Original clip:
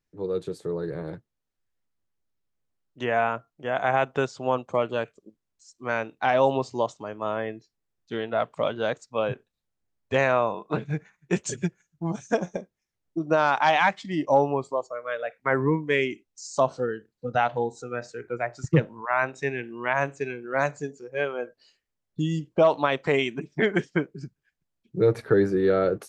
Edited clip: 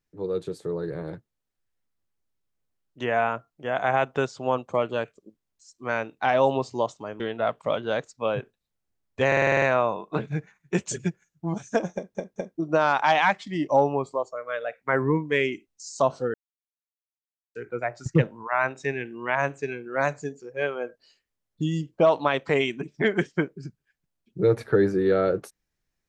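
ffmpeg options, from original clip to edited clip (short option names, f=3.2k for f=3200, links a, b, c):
-filter_complex "[0:a]asplit=14[a][b][c][d][e][f][g][h][i][j][k][l][m][n];[a]atrim=end=7.202[o];[b]atrim=start=8.128:end=10.252[p];[c]atrim=start=10.198:end=10.252[q];[d]atrim=start=10.198:end=10.252[r];[e]atrim=start=10.198:end=10.252[s];[f]atrim=start=10.198:end=10.252[t];[g]atrim=start=10.198:end=10.252[u];[h]atrim=start=10.198:end=10.252[v];[i]atrim=start=10.198:end=12.732[w];[j]atrim=start=12.518:end=12.732[x];[k]atrim=start=12.518:end=12.732[y];[l]atrim=start=13.148:end=16.92,asetpts=PTS-STARTPTS,afade=t=out:st=3.768:d=0.004:c=hsin[z];[m]atrim=start=16.92:end=18.13,asetpts=PTS-STARTPTS,volume=0[aa];[n]atrim=start=18.13,asetpts=PTS-STARTPTS,afade=t=in:d=0.004:c=hsin[ab];[o][p]acrossfade=d=0.004:c1=hsin:c2=hsin[ac];[ac][q]acrossfade=d=0.004:c1=hsin:c2=hsin[ad];[ad][r]acrossfade=d=0.004:c1=hsin:c2=hsin[ae];[ae][s]acrossfade=d=0.004:c1=hsin:c2=hsin[af];[af][t]acrossfade=d=0.004:c1=hsin:c2=hsin[ag];[ag][u]acrossfade=d=0.004:c1=hsin:c2=hsin[ah];[ah][v]acrossfade=d=0.004:c1=hsin:c2=hsin[ai];[ai][w]acrossfade=d=0.004:c1=hsin:c2=hsin[aj];[aj][x]acrossfade=d=0.004:c1=hsin:c2=hsin[ak];[ak][y]acrossfade=d=0.004:c1=hsin:c2=hsin[al];[z][aa][ab]concat=n=3:v=0:a=1[am];[al][am]acrossfade=d=0.004:c1=hsin:c2=hsin"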